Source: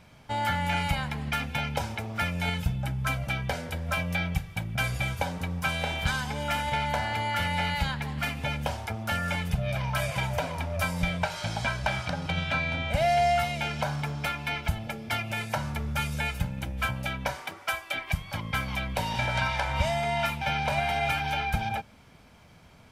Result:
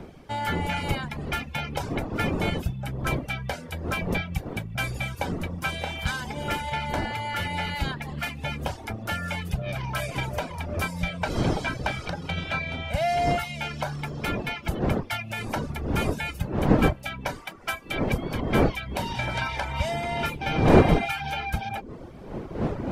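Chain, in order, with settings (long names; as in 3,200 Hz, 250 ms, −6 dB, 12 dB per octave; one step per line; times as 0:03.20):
wind on the microphone 400 Hz −29 dBFS
reverb reduction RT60 0.53 s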